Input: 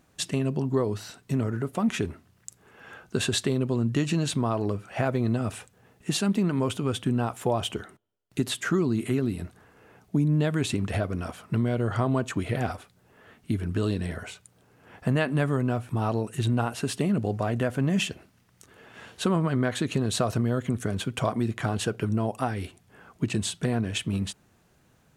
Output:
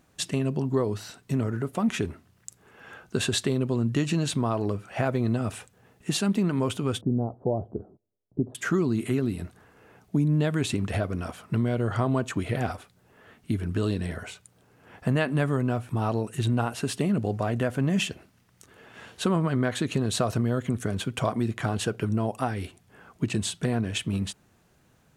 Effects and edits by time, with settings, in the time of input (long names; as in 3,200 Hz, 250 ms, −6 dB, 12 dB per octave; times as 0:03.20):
0:07.01–0:08.55: inverse Chebyshev low-pass filter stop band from 2,300 Hz, stop band 60 dB